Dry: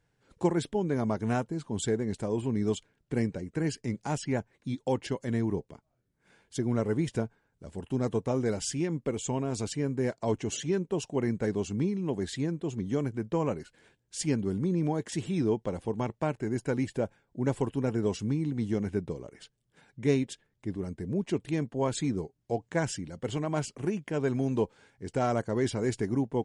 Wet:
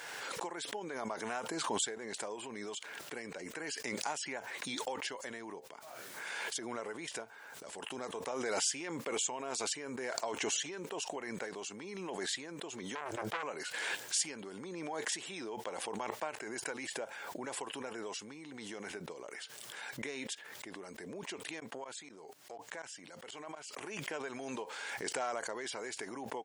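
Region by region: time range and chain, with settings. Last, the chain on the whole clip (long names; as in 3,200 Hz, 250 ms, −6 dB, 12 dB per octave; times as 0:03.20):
0:12.95–0:13.43: parametric band 240 Hz −13 dB 0.27 octaves + saturating transformer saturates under 1,600 Hz
0:21.60–0:23.99: downward compressor 4 to 1, threshold −37 dBFS + tremolo with a ramp in dB swelling 4.1 Hz, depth 18 dB
whole clip: downward compressor, threshold −31 dBFS; high-pass filter 800 Hz 12 dB per octave; background raised ahead of every attack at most 20 dB per second; level +3 dB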